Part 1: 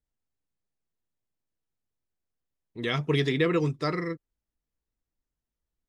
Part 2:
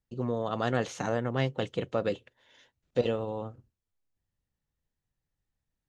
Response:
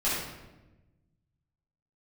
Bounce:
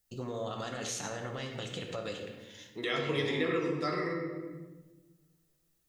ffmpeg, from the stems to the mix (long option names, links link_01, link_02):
-filter_complex "[0:a]highpass=250,volume=0.5dB,asplit=2[link_01][link_02];[link_02]volume=-6.5dB[link_03];[1:a]crystalizer=i=6.5:c=0,alimiter=limit=-20dB:level=0:latency=1:release=82,volume=-4.5dB,asplit=2[link_04][link_05];[link_05]volume=-11dB[link_06];[2:a]atrim=start_sample=2205[link_07];[link_03][link_06]amix=inputs=2:normalize=0[link_08];[link_08][link_07]afir=irnorm=-1:irlink=0[link_09];[link_01][link_04][link_09]amix=inputs=3:normalize=0,acompressor=threshold=-37dB:ratio=2"